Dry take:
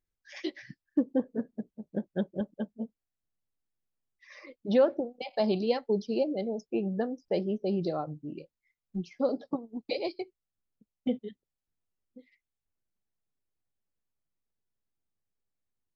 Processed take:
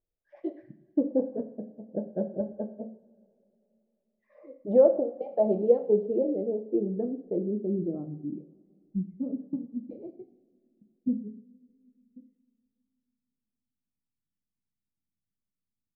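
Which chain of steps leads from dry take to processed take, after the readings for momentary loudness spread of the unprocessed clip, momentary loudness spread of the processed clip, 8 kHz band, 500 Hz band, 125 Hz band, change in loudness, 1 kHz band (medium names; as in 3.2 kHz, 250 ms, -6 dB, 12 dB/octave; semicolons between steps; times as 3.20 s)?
14 LU, 17 LU, no reading, +4.0 dB, +0.5 dB, +3.0 dB, -4.0 dB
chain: low-pass sweep 610 Hz -> 220 Hz, 5.06–9.05 s; two-slope reverb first 0.54 s, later 3.1 s, from -22 dB, DRR 6 dB; trim -2.5 dB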